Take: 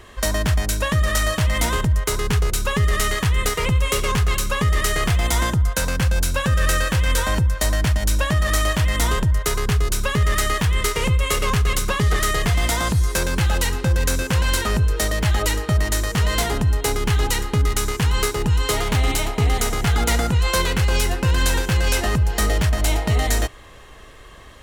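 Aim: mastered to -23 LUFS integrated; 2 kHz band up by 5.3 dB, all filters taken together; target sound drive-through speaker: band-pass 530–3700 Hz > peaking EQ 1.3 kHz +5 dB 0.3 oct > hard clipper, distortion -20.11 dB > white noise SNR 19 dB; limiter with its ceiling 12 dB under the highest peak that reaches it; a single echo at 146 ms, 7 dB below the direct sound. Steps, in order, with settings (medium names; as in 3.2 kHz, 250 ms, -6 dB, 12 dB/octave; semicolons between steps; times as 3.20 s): peaking EQ 2 kHz +6 dB; peak limiter -18.5 dBFS; band-pass 530–3700 Hz; peaking EQ 1.3 kHz +5 dB 0.3 oct; delay 146 ms -7 dB; hard clipper -23 dBFS; white noise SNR 19 dB; trim +6 dB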